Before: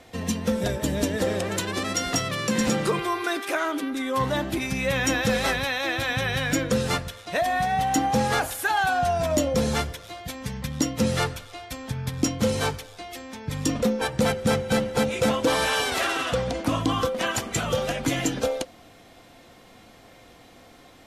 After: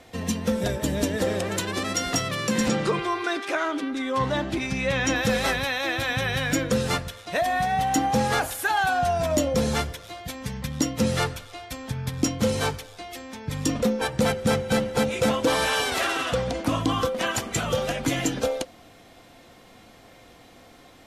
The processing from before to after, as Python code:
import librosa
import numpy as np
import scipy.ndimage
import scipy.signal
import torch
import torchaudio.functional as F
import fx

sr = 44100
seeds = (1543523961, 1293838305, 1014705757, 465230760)

y = fx.lowpass(x, sr, hz=6800.0, slope=12, at=(2.68, 5.16))